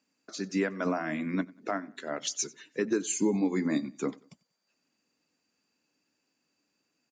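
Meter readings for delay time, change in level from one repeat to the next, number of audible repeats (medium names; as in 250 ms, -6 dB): 93 ms, -9.0 dB, 2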